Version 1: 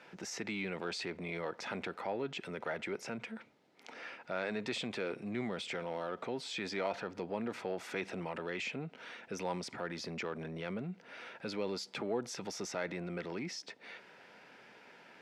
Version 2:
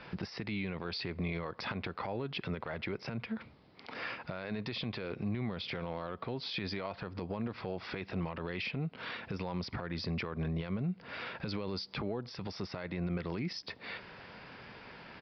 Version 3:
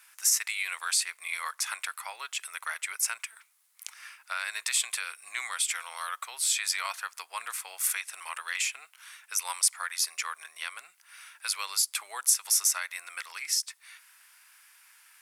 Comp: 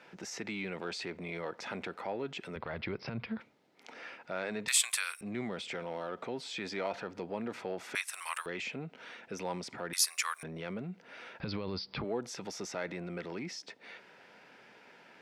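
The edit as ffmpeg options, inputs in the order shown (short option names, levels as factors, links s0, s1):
-filter_complex "[1:a]asplit=2[s0][s1];[2:a]asplit=3[s2][s3][s4];[0:a]asplit=6[s5][s6][s7][s8][s9][s10];[s5]atrim=end=2.562[s11];[s0]atrim=start=2.558:end=3.402[s12];[s6]atrim=start=3.398:end=4.682[s13];[s2]atrim=start=4.678:end=5.212[s14];[s7]atrim=start=5.208:end=7.952[s15];[s3]atrim=start=7.948:end=8.462[s16];[s8]atrim=start=8.458:end=9.932[s17];[s4]atrim=start=9.928:end=10.432[s18];[s9]atrim=start=10.428:end=11.402[s19];[s1]atrim=start=11.398:end=12.042[s20];[s10]atrim=start=12.038[s21];[s11][s12]acrossfade=d=0.004:c1=hsin:c2=hsin[s22];[s22][s13]acrossfade=d=0.004:c1=hsin:c2=hsin[s23];[s23][s14]acrossfade=d=0.004:c1=hsin:c2=hsin[s24];[s24][s15]acrossfade=d=0.004:c1=hsin:c2=hsin[s25];[s25][s16]acrossfade=d=0.004:c1=hsin:c2=hsin[s26];[s26][s17]acrossfade=d=0.004:c1=hsin:c2=hsin[s27];[s27][s18]acrossfade=d=0.004:c1=hsin:c2=hsin[s28];[s28][s19]acrossfade=d=0.004:c1=hsin:c2=hsin[s29];[s29][s20]acrossfade=d=0.004:c1=hsin:c2=hsin[s30];[s30][s21]acrossfade=d=0.004:c1=hsin:c2=hsin"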